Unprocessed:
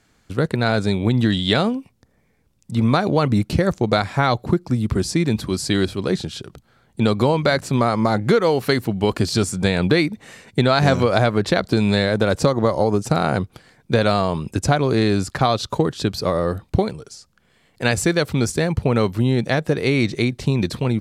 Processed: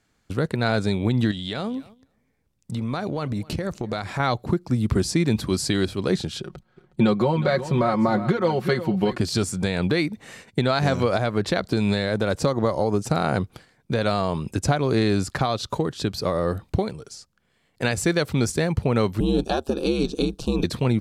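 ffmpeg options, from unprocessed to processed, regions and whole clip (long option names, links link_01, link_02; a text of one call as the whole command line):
ffmpeg -i in.wav -filter_complex "[0:a]asettb=1/sr,asplit=3[link_01][link_02][link_03];[link_01]atrim=end=1.314[link_04];[link_02]atrim=start=1.31:end=4.2,asetpts=PTS-STARTPTS,afade=type=in:duration=0.004:curve=qsin,afade=type=out:start_time=2.886:duration=0.004:curve=qsin,acompressor=threshold=-25dB:ratio=4:attack=3.2:release=140:knee=1:detection=peak,aecho=1:1:252|504:0.075|0.0135,atrim=end_sample=127449[link_05];[link_03]atrim=start=4.196[link_06];[link_04][link_05]acrossfade=duration=0.004:curve1=hsin:curve2=qsin[link_07];[link_07][link_06]acrossfade=duration=0.004:curve1=qsin:curve2=hsin,asettb=1/sr,asplit=3[link_08][link_09][link_10];[link_08]atrim=end=6.404[link_11];[link_09]atrim=start=6.4:end=9.21,asetpts=PTS-STARTPTS,afade=type=in:duration=0.004:curve=qsin,afade=type=out:start_time=2.806:duration=0.004:curve=qsin,lowpass=frequency=2600:poles=1,aecho=1:1:5.5:0.79,atrim=end_sample=123921,aecho=1:1:364:0.211,atrim=end_sample=123921[link_12];[link_10]atrim=start=9.206[link_13];[link_11][link_12]acrossfade=duration=0.004:curve1=hsin:curve2=qsin[link_14];[link_14][link_13]acrossfade=duration=0.004:curve1=qsin:curve2=hsin,asettb=1/sr,asplit=3[link_15][link_16][link_17];[link_15]atrim=end=19.204[link_18];[link_16]atrim=start=19.2:end=20.64,asetpts=PTS-STARTPTS,afade=type=in:duration=0.004:curve=qsin,afade=type=out:start_time=1.436:duration=0.004:curve=qsin,aecho=1:1:2.8:0.84,atrim=end_sample=63504,aeval=exprs='val(0)*sin(2*PI*73*n/s)':channel_layout=same,asuperstop=centerf=2000:order=4:qfactor=1.8[link_19];[link_17]atrim=start=20.636[link_20];[link_18][link_19]acrossfade=duration=0.004:curve1=hsin:curve2=qsin[link_21];[link_21][link_20]acrossfade=duration=0.004:curve1=qsin:curve2=hsin,agate=range=-8dB:threshold=-44dB:ratio=16:detection=peak,alimiter=limit=-10.5dB:level=0:latency=1:release=459" out.wav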